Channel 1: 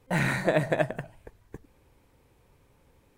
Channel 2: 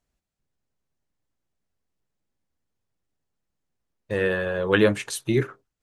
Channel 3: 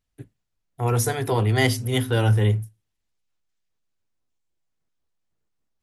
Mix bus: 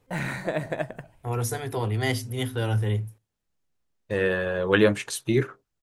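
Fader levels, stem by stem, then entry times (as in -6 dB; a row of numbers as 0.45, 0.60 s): -4.0, -0.5, -6.0 dB; 0.00, 0.00, 0.45 s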